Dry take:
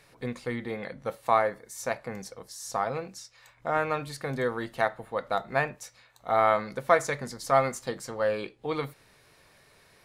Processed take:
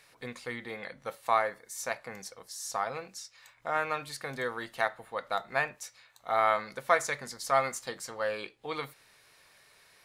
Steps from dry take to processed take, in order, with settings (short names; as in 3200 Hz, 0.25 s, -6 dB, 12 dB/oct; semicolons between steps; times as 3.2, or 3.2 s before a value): tilt shelf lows -6 dB, about 640 Hz; gain -5 dB